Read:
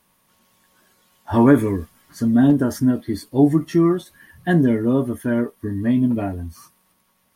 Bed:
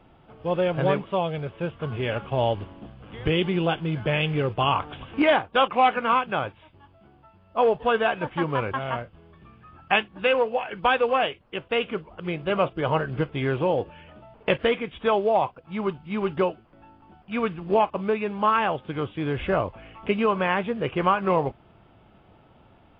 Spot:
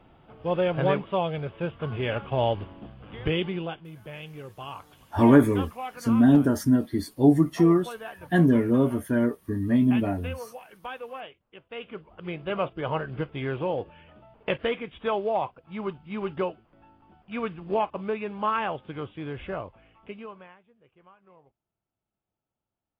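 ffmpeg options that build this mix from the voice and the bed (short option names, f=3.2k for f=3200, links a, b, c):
-filter_complex "[0:a]adelay=3850,volume=-3dB[a];[1:a]volume=10.5dB,afade=t=out:st=3.16:d=0.68:silence=0.16788,afade=t=in:st=11.69:d=0.56:silence=0.266073,afade=t=out:st=18.73:d=1.86:silence=0.0334965[b];[a][b]amix=inputs=2:normalize=0"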